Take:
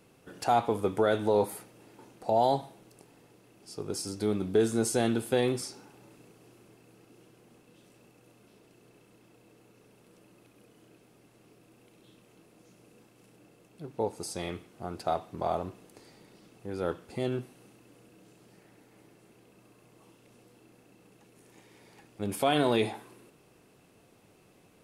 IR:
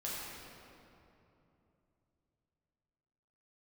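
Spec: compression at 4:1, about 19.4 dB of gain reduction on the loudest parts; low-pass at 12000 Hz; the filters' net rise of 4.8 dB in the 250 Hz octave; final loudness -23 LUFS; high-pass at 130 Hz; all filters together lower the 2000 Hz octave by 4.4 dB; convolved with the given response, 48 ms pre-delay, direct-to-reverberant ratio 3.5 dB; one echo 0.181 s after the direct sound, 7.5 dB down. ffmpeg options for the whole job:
-filter_complex "[0:a]highpass=130,lowpass=12k,equalizer=f=250:t=o:g=6.5,equalizer=f=2k:t=o:g=-6.5,acompressor=threshold=-43dB:ratio=4,aecho=1:1:181:0.422,asplit=2[a][b];[1:a]atrim=start_sample=2205,adelay=48[c];[b][c]afir=irnorm=-1:irlink=0,volume=-6dB[d];[a][d]amix=inputs=2:normalize=0,volume=23.5dB"

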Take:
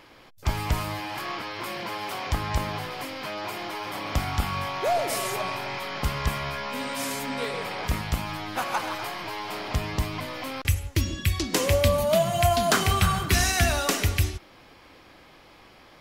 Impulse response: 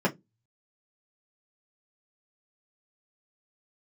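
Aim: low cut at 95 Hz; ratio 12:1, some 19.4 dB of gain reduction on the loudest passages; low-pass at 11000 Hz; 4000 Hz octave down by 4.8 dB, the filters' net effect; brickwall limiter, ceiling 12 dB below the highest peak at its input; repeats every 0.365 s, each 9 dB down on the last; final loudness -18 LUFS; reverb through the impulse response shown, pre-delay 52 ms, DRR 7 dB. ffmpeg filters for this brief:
-filter_complex "[0:a]highpass=95,lowpass=11k,equalizer=f=4k:t=o:g=-6.5,acompressor=threshold=-38dB:ratio=12,alimiter=level_in=10dB:limit=-24dB:level=0:latency=1,volume=-10dB,aecho=1:1:365|730|1095|1460:0.355|0.124|0.0435|0.0152,asplit=2[a][b];[1:a]atrim=start_sample=2205,adelay=52[c];[b][c]afir=irnorm=-1:irlink=0,volume=-19dB[d];[a][d]amix=inputs=2:normalize=0,volume=23.5dB"

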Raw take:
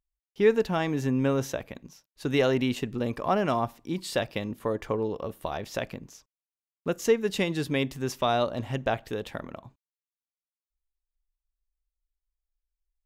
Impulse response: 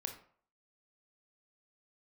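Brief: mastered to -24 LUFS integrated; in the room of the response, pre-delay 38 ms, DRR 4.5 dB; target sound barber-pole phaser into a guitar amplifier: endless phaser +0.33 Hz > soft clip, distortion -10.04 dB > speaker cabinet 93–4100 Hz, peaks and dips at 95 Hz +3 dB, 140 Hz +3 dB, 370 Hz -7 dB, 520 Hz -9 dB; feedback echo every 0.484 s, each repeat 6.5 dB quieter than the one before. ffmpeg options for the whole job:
-filter_complex "[0:a]aecho=1:1:484|968|1452|1936|2420|2904:0.473|0.222|0.105|0.0491|0.0231|0.0109,asplit=2[a][b];[1:a]atrim=start_sample=2205,adelay=38[c];[b][c]afir=irnorm=-1:irlink=0,volume=-3dB[d];[a][d]amix=inputs=2:normalize=0,asplit=2[e][f];[f]afreqshift=0.33[g];[e][g]amix=inputs=2:normalize=1,asoftclip=threshold=-24.5dB,highpass=93,equalizer=f=95:t=q:w=4:g=3,equalizer=f=140:t=q:w=4:g=3,equalizer=f=370:t=q:w=4:g=-7,equalizer=f=520:t=q:w=4:g=-9,lowpass=f=4.1k:w=0.5412,lowpass=f=4.1k:w=1.3066,volume=11dB"

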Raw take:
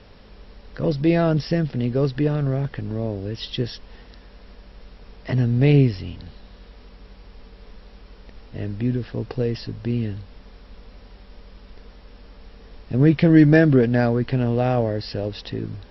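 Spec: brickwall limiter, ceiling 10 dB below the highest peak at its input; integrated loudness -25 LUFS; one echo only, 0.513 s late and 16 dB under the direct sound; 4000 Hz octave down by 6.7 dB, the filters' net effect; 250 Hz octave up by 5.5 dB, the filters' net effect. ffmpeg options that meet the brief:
-af "equalizer=f=250:t=o:g=7.5,equalizer=f=4k:t=o:g=-9,alimiter=limit=-9dB:level=0:latency=1,aecho=1:1:513:0.158,volume=-4.5dB"

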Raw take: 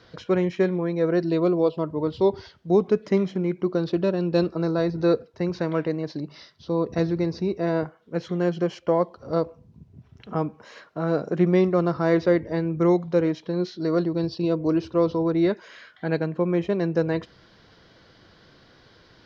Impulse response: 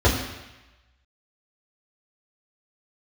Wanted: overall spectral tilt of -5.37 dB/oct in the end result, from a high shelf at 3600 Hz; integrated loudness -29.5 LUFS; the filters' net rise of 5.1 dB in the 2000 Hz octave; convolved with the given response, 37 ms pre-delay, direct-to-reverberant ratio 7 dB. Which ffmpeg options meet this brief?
-filter_complex "[0:a]equalizer=f=2k:t=o:g=8.5,highshelf=f=3.6k:g=-8.5,asplit=2[a][b];[1:a]atrim=start_sample=2205,adelay=37[c];[b][c]afir=irnorm=-1:irlink=0,volume=-26dB[d];[a][d]amix=inputs=2:normalize=0,volume=-7.5dB"

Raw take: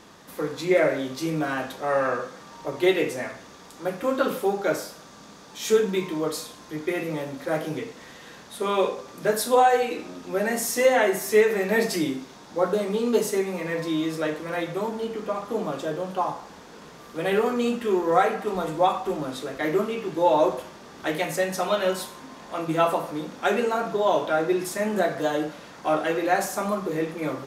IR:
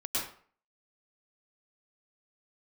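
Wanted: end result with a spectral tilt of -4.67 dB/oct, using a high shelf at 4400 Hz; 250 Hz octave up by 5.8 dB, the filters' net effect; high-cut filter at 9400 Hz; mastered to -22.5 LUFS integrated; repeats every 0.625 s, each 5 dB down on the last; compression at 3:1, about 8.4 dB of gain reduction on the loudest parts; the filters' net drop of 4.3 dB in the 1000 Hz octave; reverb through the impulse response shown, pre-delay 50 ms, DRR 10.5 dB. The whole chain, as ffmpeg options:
-filter_complex "[0:a]lowpass=9.4k,equalizer=f=250:t=o:g=8.5,equalizer=f=1k:t=o:g=-7.5,highshelf=f=4.4k:g=6,acompressor=threshold=-24dB:ratio=3,aecho=1:1:625|1250|1875|2500|3125|3750|4375:0.562|0.315|0.176|0.0988|0.0553|0.031|0.0173,asplit=2[a][b];[1:a]atrim=start_sample=2205,adelay=50[c];[b][c]afir=irnorm=-1:irlink=0,volume=-16dB[d];[a][d]amix=inputs=2:normalize=0,volume=4dB"

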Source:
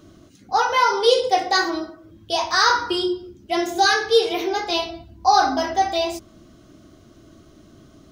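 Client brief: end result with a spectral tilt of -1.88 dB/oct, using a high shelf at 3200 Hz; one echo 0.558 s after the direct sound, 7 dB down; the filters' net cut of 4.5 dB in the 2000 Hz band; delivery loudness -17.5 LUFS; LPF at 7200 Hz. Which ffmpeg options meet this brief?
-af "lowpass=7.2k,equalizer=f=2k:t=o:g=-7.5,highshelf=f=3.2k:g=3.5,aecho=1:1:558:0.447,volume=3dB"

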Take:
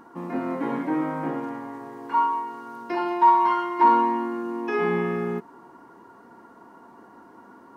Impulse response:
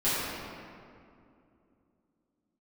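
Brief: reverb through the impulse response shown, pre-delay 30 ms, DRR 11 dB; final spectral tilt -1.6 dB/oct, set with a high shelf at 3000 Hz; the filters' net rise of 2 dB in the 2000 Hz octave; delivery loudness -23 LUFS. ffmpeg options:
-filter_complex "[0:a]equalizer=f=2k:t=o:g=5.5,highshelf=f=3k:g=-9,asplit=2[a][b];[1:a]atrim=start_sample=2205,adelay=30[c];[b][c]afir=irnorm=-1:irlink=0,volume=-24dB[d];[a][d]amix=inputs=2:normalize=0"

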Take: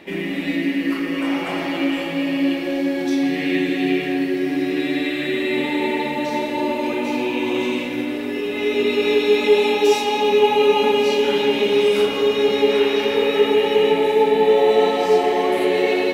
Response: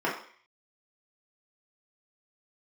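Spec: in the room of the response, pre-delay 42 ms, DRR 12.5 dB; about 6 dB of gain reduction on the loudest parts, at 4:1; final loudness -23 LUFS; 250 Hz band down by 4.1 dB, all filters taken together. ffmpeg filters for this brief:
-filter_complex "[0:a]equalizer=f=250:t=o:g=-5,acompressor=threshold=-19dB:ratio=4,asplit=2[a][b];[1:a]atrim=start_sample=2205,adelay=42[c];[b][c]afir=irnorm=-1:irlink=0,volume=-24.5dB[d];[a][d]amix=inputs=2:normalize=0"

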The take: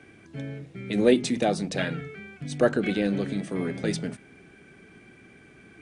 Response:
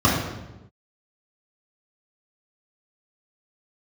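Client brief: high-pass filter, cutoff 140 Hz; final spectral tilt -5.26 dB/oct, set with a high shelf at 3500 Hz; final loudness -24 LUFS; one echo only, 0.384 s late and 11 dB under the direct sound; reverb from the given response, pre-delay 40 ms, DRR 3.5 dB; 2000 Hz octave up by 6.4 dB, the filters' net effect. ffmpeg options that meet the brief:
-filter_complex "[0:a]highpass=140,equalizer=f=2k:t=o:g=5.5,highshelf=f=3.5k:g=8.5,aecho=1:1:384:0.282,asplit=2[a][b];[1:a]atrim=start_sample=2205,adelay=40[c];[b][c]afir=irnorm=-1:irlink=0,volume=-24.5dB[d];[a][d]amix=inputs=2:normalize=0,volume=-3dB"

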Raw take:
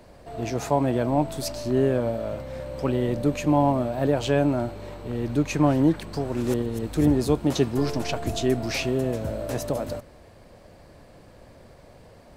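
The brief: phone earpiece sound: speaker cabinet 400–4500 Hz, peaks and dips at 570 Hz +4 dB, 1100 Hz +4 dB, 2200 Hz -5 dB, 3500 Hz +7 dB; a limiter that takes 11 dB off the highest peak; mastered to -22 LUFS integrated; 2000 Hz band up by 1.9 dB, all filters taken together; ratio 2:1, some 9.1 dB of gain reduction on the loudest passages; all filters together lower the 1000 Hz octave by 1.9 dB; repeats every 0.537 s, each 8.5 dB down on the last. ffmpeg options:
-af "equalizer=f=1k:t=o:g=-5.5,equalizer=f=2k:t=o:g=5.5,acompressor=threshold=-33dB:ratio=2,alimiter=level_in=4dB:limit=-24dB:level=0:latency=1,volume=-4dB,highpass=400,equalizer=f=570:t=q:w=4:g=4,equalizer=f=1.1k:t=q:w=4:g=4,equalizer=f=2.2k:t=q:w=4:g=-5,equalizer=f=3.5k:t=q:w=4:g=7,lowpass=f=4.5k:w=0.5412,lowpass=f=4.5k:w=1.3066,aecho=1:1:537|1074|1611|2148:0.376|0.143|0.0543|0.0206,volume=17.5dB"

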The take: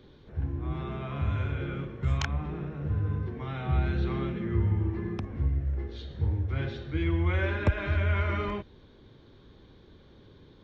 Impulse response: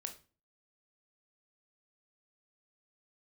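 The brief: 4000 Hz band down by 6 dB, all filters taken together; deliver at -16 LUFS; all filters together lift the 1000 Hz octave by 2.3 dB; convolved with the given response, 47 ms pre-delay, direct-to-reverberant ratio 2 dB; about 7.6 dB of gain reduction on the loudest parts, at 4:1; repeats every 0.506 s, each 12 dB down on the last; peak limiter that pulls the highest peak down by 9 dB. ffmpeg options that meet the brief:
-filter_complex "[0:a]equalizer=f=1k:t=o:g=3.5,equalizer=f=4k:t=o:g=-8.5,acompressor=threshold=-28dB:ratio=4,alimiter=level_in=3dB:limit=-24dB:level=0:latency=1,volume=-3dB,aecho=1:1:506|1012|1518:0.251|0.0628|0.0157,asplit=2[a][b];[1:a]atrim=start_sample=2205,adelay=47[c];[b][c]afir=irnorm=-1:irlink=0,volume=0.5dB[d];[a][d]amix=inputs=2:normalize=0,volume=17.5dB"

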